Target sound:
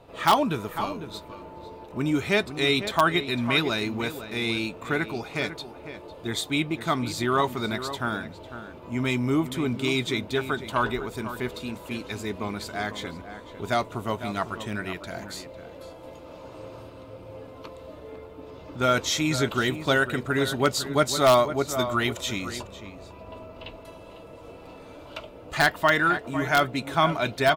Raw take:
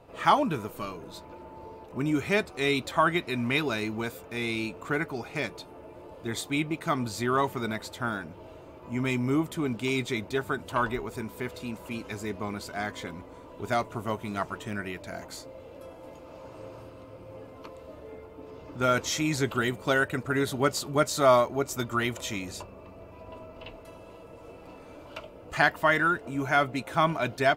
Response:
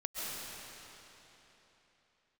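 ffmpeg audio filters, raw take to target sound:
-filter_complex "[0:a]asplit=2[a][b];[b]adelay=501.5,volume=-11dB,highshelf=f=4k:g=-11.3[c];[a][c]amix=inputs=2:normalize=0,asplit=2[d][e];[e]aeval=exprs='(mod(3.76*val(0)+1,2)-1)/3.76':c=same,volume=-7dB[f];[d][f]amix=inputs=2:normalize=0,equalizer=f=3.7k:w=3:g=6,volume=-1dB"

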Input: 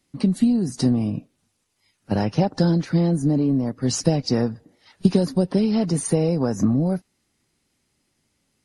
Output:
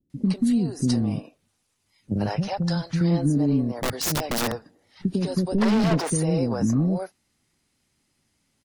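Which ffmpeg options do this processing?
-filter_complex "[0:a]asettb=1/sr,asplit=3[a][b][c];[a]atrim=end=2.264[d];[b]atrim=start=2.26:end=3.01,asetpts=PTS-STARTPTS,afade=t=in:d=0.004:c=qsin,afade=t=out:st=0.746:d=0.004:c=qsin,equalizer=f=310:t=o:w=1.2:g=-15[e];[c]atrim=start=3.006[f];[d][e]acrossfade=d=0.004:c1=hsin:c2=qsin[g];[g][f]acrossfade=d=0.004:c1=qsin:c2=hsin,alimiter=limit=-12.5dB:level=0:latency=1:release=139,asettb=1/sr,asplit=3[h][i][j];[h]atrim=end=5.484[k];[i]atrim=start=5.48:end=6,asetpts=PTS-STARTPTS,afade=t=in:d=0.004:c=qsin,afade=t=out:st=0.516:d=0.004:c=qsin,asplit=2[l][m];[m]highpass=f=720:p=1,volume=31dB,asoftclip=type=tanh:threshold=-12.5dB[n];[l][n]amix=inputs=2:normalize=0,lowpass=f=1.5k:p=1,volume=-6dB[o];[j]atrim=start=5.996[p];[k][o]acrossfade=d=0.004:c1=hsin:c2=qsin[q];[q][p]acrossfade=d=0.004:c1=qsin:c2=hsin,acrossover=split=420[r][s];[s]adelay=100[t];[r][t]amix=inputs=2:normalize=0,asettb=1/sr,asplit=3[u][v][w];[u]atrim=end=3.724[x];[v]atrim=start=3.72:end=4.52,asetpts=PTS-STARTPTS,afade=t=in:d=0.004:c=qsin,afade=t=out:st=0.796:d=0.004:c=qsin,aeval=exprs='(mod(9.44*val(0)+1,2)-1)/9.44':c=same[y];[w]atrim=start=4.516[z];[x][y]acrossfade=d=0.004:c1=hsin:c2=qsin[aa];[aa][z]acrossfade=d=0.004:c1=qsin:c2=hsin"

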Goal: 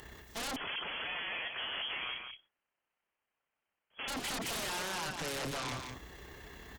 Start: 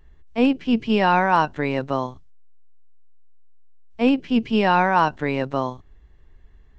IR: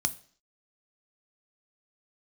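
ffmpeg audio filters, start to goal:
-filter_complex "[0:a]highpass=57,aemphasis=mode=production:type=bsi,acompressor=threshold=-30dB:ratio=6,alimiter=level_in=6.5dB:limit=-24dB:level=0:latency=1:release=26,volume=-6.5dB,tremolo=f=32:d=0.519,aeval=exprs='0.0316*sin(PI/2*7.94*val(0)/0.0316)':c=same,aecho=1:1:174:0.501,asettb=1/sr,asplit=3[a][b][c];[a]atrim=end=0.564[d];[b]atrim=start=0.56:end=4.08,asetpts=PTS-STARTPTS,afade=t=in:d=0.004:c=qsin,afade=t=out:st=3.516:d=0.004:c=qsin,lowpass=f=2.9k:t=q:w=0.5098,lowpass=f=2.9k:t=q:w=0.6013,lowpass=f=2.9k:t=q:w=0.9,lowpass=f=2.9k:t=q:w=2.563,afreqshift=-3400[e];[c]atrim=start=4.076[f];[d][e]acrossfade=d=0.004:c1=hsin:c2=qsin[g];[g][f]acrossfade=d=0.004:c1=qsin:c2=hsin,volume=-5dB" -ar 48000 -c:a libopus -b:a 192k

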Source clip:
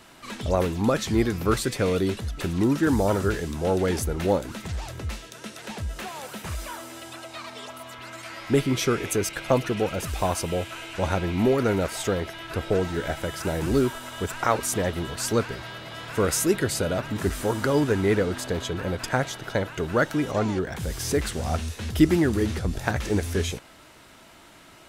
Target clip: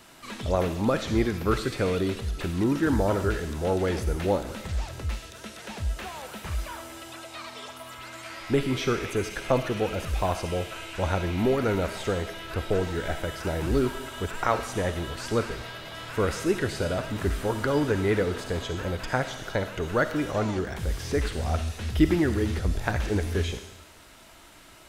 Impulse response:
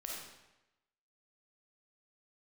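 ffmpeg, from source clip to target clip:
-filter_complex "[0:a]asubboost=boost=2.5:cutoff=75,asplit=2[a][b];[1:a]atrim=start_sample=2205,highshelf=f=3.5k:g=11.5[c];[b][c]afir=irnorm=-1:irlink=0,volume=-8dB[d];[a][d]amix=inputs=2:normalize=0,acrossover=split=4200[e][f];[f]acompressor=threshold=-43dB:ratio=4:attack=1:release=60[g];[e][g]amix=inputs=2:normalize=0,volume=-3.5dB"

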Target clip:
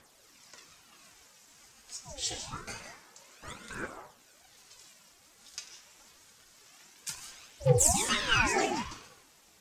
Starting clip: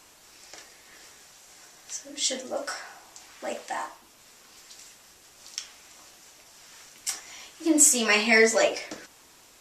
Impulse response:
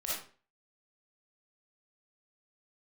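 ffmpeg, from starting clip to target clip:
-filter_complex "[0:a]aphaser=in_gain=1:out_gain=1:delay=4.1:decay=0.68:speed=0.26:type=triangular,asplit=2[a][b];[1:a]atrim=start_sample=2205,adelay=94[c];[b][c]afir=irnorm=-1:irlink=0,volume=-11dB[d];[a][d]amix=inputs=2:normalize=0,aeval=exprs='val(0)*sin(2*PI*500*n/s+500*0.65/1.1*sin(2*PI*1.1*n/s))':c=same,volume=-7dB"

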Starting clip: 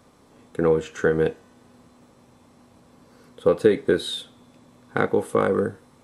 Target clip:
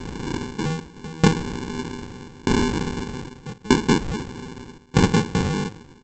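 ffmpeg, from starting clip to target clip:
-af "aeval=exprs='val(0)+0.5*0.0251*sgn(val(0))':c=same,highpass=f=120:w=0.5412,highpass=f=120:w=1.3066,dynaudnorm=f=180:g=3:m=15.5dB,asoftclip=type=hard:threshold=-11.5dB,aresample=16000,acrusher=samples=25:mix=1:aa=0.000001,aresample=44100,aeval=exprs='val(0)*pow(10,-27*if(lt(mod(0.81*n/s,1),2*abs(0.81)/1000),1-mod(0.81*n/s,1)/(2*abs(0.81)/1000),(mod(0.81*n/s,1)-2*abs(0.81)/1000)/(1-2*abs(0.81)/1000))/20)':c=same,volume=5dB"

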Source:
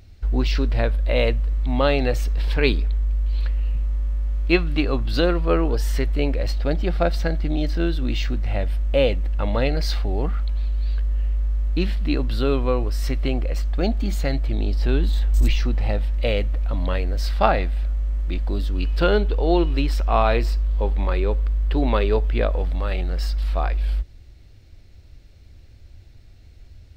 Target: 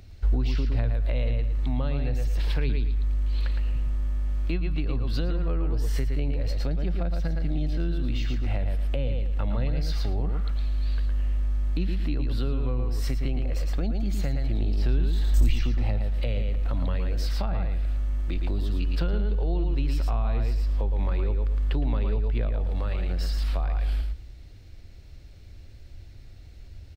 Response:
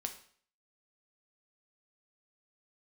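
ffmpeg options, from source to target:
-filter_complex "[0:a]aecho=1:1:112|224|336:0.501|0.0802|0.0128,acrossover=split=170[a][b];[b]acompressor=threshold=-35dB:ratio=8[c];[a][c]amix=inputs=2:normalize=0"

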